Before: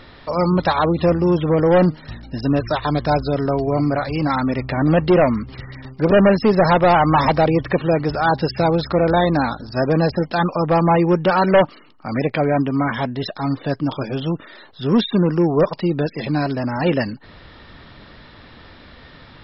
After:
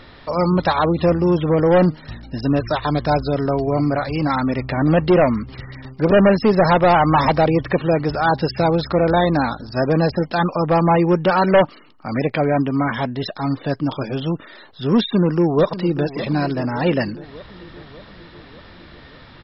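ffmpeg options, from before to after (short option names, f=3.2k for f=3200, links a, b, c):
-filter_complex "[0:a]asplit=2[a][b];[b]afade=t=in:st=14.99:d=0.01,afade=t=out:st=16.06:d=0.01,aecho=0:1:590|1180|1770|2360|2950|3540:0.199526|0.119716|0.0718294|0.0430977|0.0258586|0.0155152[c];[a][c]amix=inputs=2:normalize=0"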